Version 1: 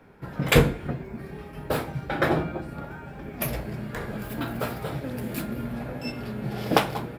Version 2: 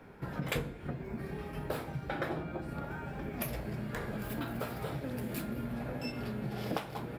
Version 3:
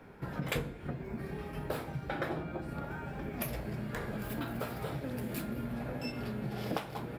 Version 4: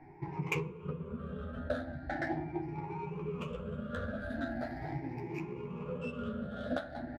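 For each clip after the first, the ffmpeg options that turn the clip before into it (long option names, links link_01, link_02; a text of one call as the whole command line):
ffmpeg -i in.wav -af "acompressor=threshold=-35dB:ratio=4" out.wav
ffmpeg -i in.wav -af anull out.wav
ffmpeg -i in.wav -filter_complex "[0:a]afftfilt=real='re*pow(10,23/40*sin(2*PI*(0.75*log(max(b,1)*sr/1024/100)/log(2)-(0.4)*(pts-256)/sr)))':imag='im*pow(10,23/40*sin(2*PI*(0.75*log(max(b,1)*sr/1024/100)/log(2)-(0.4)*(pts-256)/sr)))':win_size=1024:overlap=0.75,adynamicsmooth=sensitivity=2.5:basefreq=2000,asplit=2[link_01][link_02];[link_02]adelay=12,volume=-5.5dB[link_03];[link_01][link_03]amix=inputs=2:normalize=0,volume=-6dB" out.wav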